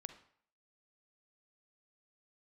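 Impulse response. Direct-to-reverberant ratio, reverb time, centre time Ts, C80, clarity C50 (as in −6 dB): 9.5 dB, 0.60 s, 9 ms, 14.5 dB, 10.5 dB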